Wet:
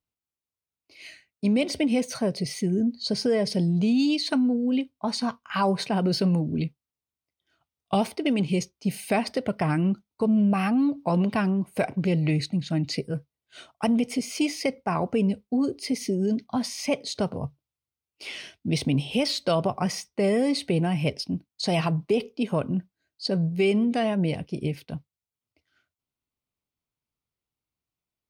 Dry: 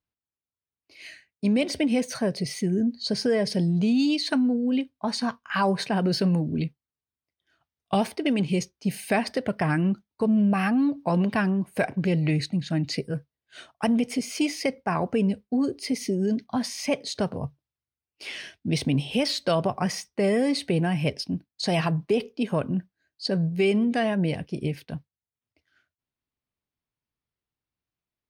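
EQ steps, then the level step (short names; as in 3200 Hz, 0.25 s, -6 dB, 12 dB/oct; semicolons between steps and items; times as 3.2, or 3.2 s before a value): bell 1700 Hz -10 dB 0.2 oct; 0.0 dB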